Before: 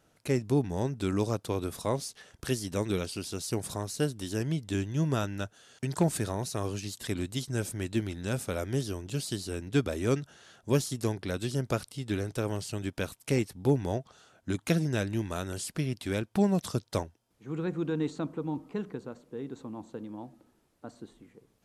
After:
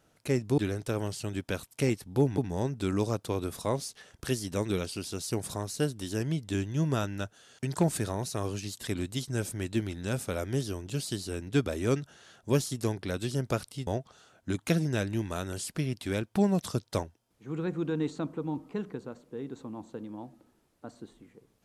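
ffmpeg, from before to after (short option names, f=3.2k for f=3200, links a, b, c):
-filter_complex "[0:a]asplit=4[a][b][c][d];[a]atrim=end=0.582[e];[b]atrim=start=12.068:end=13.872[f];[c]atrim=start=0.578:end=12.072[g];[d]atrim=start=13.868[h];[e][f]acrossfade=d=0.004:c1=hsin:c2=hsin[i];[i][g]acrossfade=d=0.004:c1=hsin:c2=hsin[j];[j][h]acrossfade=d=0.004:c1=hsin:c2=hsin"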